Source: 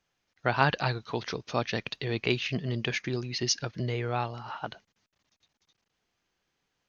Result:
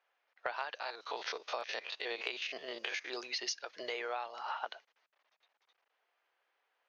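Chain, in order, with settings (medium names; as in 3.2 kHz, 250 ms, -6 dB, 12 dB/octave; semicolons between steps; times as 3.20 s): 0.75–3.10 s: spectrogram pixelated in time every 50 ms; level-controlled noise filter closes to 2.3 kHz, open at -27.5 dBFS; high-pass 520 Hz 24 dB/octave; compression 12:1, threshold -38 dBFS, peak gain reduction 20.5 dB; trim +3.5 dB; AAC 96 kbps 44.1 kHz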